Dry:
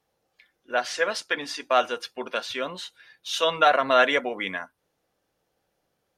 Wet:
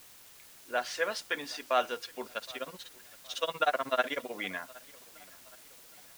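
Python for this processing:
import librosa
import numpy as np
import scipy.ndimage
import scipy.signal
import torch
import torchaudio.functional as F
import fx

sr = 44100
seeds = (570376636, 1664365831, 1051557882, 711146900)

y = fx.tremolo(x, sr, hz=16.0, depth=0.97, at=(2.24, 4.32), fade=0.02)
y = fx.quant_dither(y, sr, seeds[0], bits=8, dither='triangular')
y = fx.echo_feedback(y, sr, ms=768, feedback_pct=46, wet_db=-23.5)
y = F.gain(torch.from_numpy(y), -6.5).numpy()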